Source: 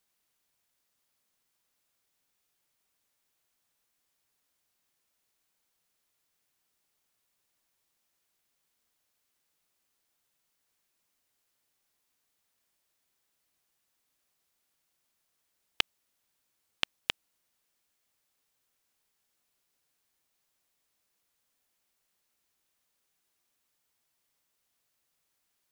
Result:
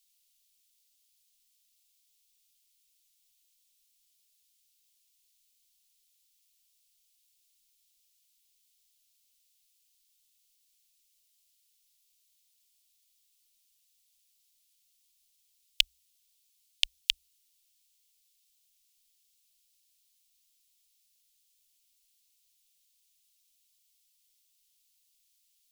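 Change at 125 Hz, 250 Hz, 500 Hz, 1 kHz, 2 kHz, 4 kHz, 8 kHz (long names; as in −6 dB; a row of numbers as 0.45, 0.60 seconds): below −10 dB, below −30 dB, below −35 dB, below −25 dB, −0.5 dB, +5.5 dB, +7.5 dB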